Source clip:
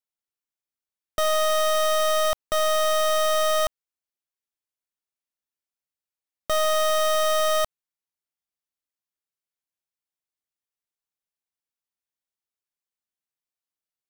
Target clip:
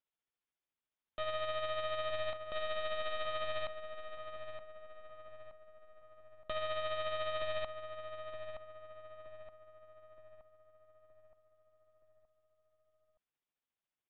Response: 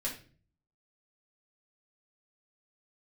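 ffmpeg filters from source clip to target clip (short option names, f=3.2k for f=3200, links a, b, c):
-filter_complex "[0:a]aresample=8000,asoftclip=type=tanh:threshold=-37dB,aresample=44100,tremolo=f=14:d=0.43,asplit=2[a][b];[b]adelay=921,lowpass=f=1.8k:p=1,volume=-7dB,asplit=2[c][d];[d]adelay=921,lowpass=f=1.8k:p=1,volume=0.52,asplit=2[e][f];[f]adelay=921,lowpass=f=1.8k:p=1,volume=0.52,asplit=2[g][h];[h]adelay=921,lowpass=f=1.8k:p=1,volume=0.52,asplit=2[i][j];[j]adelay=921,lowpass=f=1.8k:p=1,volume=0.52,asplit=2[k][l];[l]adelay=921,lowpass=f=1.8k:p=1,volume=0.52[m];[a][c][e][g][i][k][m]amix=inputs=7:normalize=0,volume=2.5dB"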